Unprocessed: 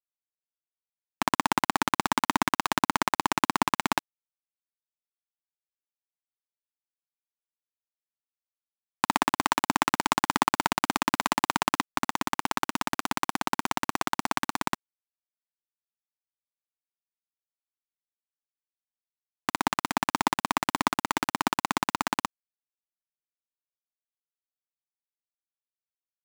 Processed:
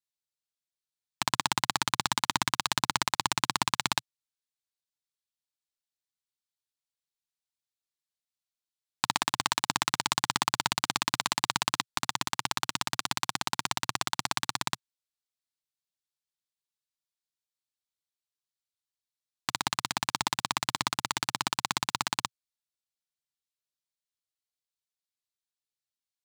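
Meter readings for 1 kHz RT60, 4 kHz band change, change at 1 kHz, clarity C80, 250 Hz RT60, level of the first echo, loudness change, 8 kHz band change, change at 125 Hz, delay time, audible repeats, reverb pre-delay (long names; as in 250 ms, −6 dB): no reverb audible, +4.0 dB, −5.0 dB, no reverb audible, no reverb audible, no echo audible, −2.0 dB, +2.5 dB, −0.5 dB, no echo audible, no echo audible, no reverb audible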